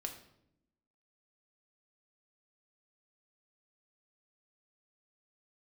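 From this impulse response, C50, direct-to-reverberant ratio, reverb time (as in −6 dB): 9.0 dB, 3.5 dB, 0.75 s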